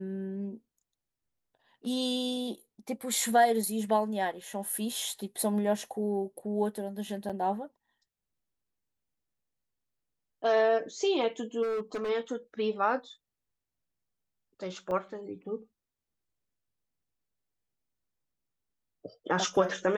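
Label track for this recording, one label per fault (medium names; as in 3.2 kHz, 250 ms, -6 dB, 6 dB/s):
7.290000	7.300000	dropout 6.6 ms
11.620000	12.100000	clipped -29 dBFS
14.910000	14.910000	dropout 2.9 ms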